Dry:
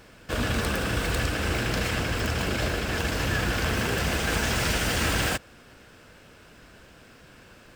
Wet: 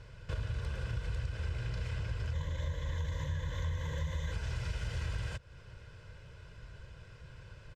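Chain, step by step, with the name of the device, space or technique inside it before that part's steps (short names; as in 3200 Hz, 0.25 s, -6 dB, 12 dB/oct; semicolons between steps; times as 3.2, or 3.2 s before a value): 2.33–4.32 ripple EQ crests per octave 1.1, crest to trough 15 dB; jukebox (LPF 6400 Hz 12 dB/oct; resonant low shelf 180 Hz +10.5 dB, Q 1.5; compressor 4:1, threshold -30 dBFS, peak gain reduction 16.5 dB); comb 2 ms, depth 58%; gain -8 dB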